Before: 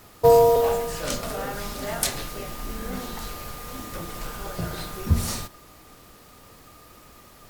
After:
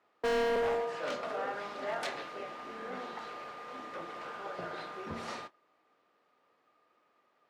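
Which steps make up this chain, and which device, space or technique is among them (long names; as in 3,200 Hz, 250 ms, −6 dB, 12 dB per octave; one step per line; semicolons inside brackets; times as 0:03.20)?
walkie-talkie (band-pass filter 410–2,400 Hz; hard clipping −25 dBFS, distortion −3 dB; noise gate −43 dBFS, range −15 dB)
level −3 dB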